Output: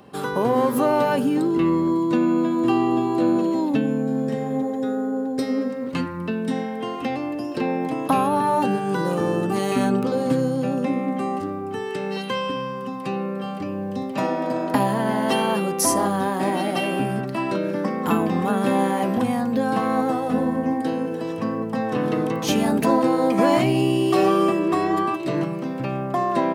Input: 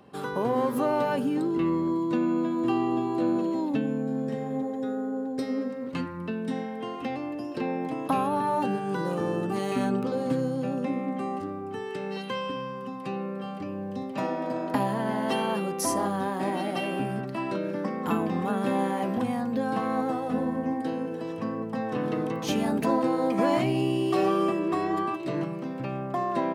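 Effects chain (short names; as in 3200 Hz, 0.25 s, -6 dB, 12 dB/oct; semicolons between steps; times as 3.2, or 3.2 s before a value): high shelf 6200 Hz +5 dB; gain +6 dB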